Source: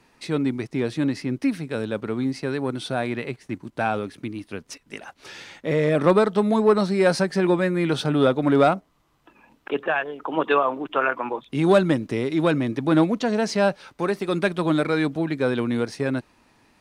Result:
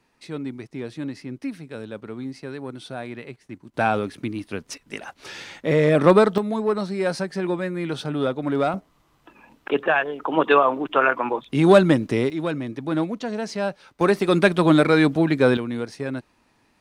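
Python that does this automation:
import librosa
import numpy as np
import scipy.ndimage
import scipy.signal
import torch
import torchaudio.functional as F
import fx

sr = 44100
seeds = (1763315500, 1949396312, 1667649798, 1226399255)

y = fx.gain(x, sr, db=fx.steps((0.0, -7.5), (3.74, 3.0), (6.38, -5.0), (8.74, 3.5), (12.3, -5.5), (14.01, 5.5), (15.57, -4.0)))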